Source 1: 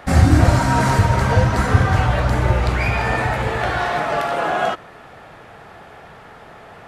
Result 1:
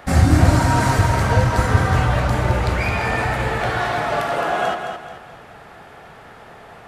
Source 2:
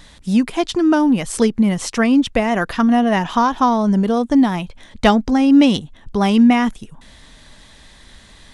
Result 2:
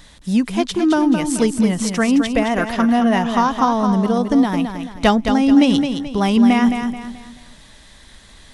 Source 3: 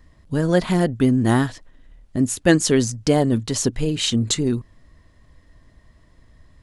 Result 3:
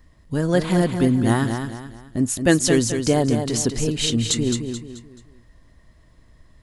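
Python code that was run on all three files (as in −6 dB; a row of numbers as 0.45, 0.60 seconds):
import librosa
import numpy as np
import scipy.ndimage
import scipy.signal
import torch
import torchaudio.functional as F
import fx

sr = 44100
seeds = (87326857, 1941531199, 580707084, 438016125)

p1 = fx.high_shelf(x, sr, hz=8400.0, db=4.5)
p2 = p1 + fx.echo_feedback(p1, sr, ms=216, feedback_pct=37, wet_db=-7.0, dry=0)
y = p2 * 10.0 ** (-1.5 / 20.0)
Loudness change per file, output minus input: −1.0, −0.5, −0.5 LU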